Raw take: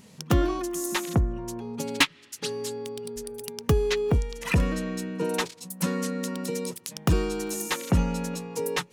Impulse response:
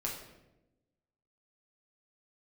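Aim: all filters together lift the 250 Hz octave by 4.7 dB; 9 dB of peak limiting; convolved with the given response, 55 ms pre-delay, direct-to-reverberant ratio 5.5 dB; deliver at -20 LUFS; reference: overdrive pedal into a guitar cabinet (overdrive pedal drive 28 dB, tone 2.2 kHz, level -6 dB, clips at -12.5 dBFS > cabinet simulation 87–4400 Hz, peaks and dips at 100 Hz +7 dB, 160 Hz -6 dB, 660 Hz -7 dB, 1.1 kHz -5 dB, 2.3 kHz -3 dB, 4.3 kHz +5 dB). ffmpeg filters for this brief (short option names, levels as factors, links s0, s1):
-filter_complex "[0:a]equalizer=f=250:t=o:g=8,alimiter=limit=0.158:level=0:latency=1,asplit=2[s0][s1];[1:a]atrim=start_sample=2205,adelay=55[s2];[s1][s2]afir=irnorm=-1:irlink=0,volume=0.422[s3];[s0][s3]amix=inputs=2:normalize=0,asplit=2[s4][s5];[s5]highpass=f=720:p=1,volume=25.1,asoftclip=type=tanh:threshold=0.237[s6];[s4][s6]amix=inputs=2:normalize=0,lowpass=f=2200:p=1,volume=0.501,highpass=87,equalizer=f=100:t=q:w=4:g=7,equalizer=f=160:t=q:w=4:g=-6,equalizer=f=660:t=q:w=4:g=-7,equalizer=f=1100:t=q:w=4:g=-5,equalizer=f=2300:t=q:w=4:g=-3,equalizer=f=4300:t=q:w=4:g=5,lowpass=f=4400:w=0.5412,lowpass=f=4400:w=1.3066,volume=1.33"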